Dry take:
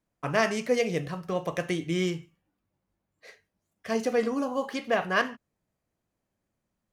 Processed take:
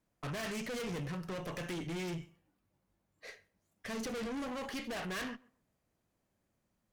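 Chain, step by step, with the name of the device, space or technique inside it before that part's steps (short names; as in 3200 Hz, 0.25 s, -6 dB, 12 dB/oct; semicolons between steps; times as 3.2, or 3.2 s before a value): rockabilly slapback (tube stage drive 38 dB, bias 0.4; tape echo 0.13 s, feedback 21%, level -23 dB, low-pass 2000 Hz); dynamic EQ 760 Hz, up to -4 dB, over -53 dBFS, Q 0.76; gain +2.5 dB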